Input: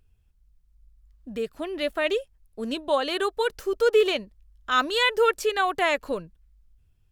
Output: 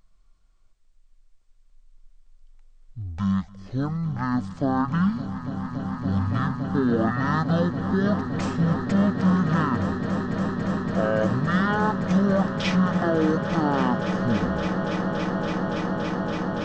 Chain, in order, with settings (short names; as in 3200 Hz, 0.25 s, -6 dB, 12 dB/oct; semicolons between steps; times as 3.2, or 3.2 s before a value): limiter -20 dBFS, peak gain reduction 10.5 dB; on a send: swelling echo 0.121 s, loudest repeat 8, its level -12 dB; on the sum: speed mistake 78 rpm record played at 33 rpm; gain +5 dB